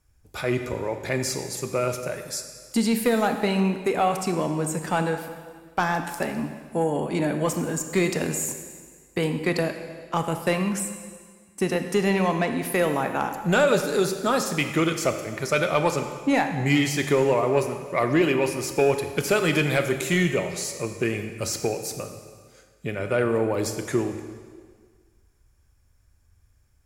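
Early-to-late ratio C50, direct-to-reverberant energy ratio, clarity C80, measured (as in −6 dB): 8.0 dB, 7.0 dB, 9.0 dB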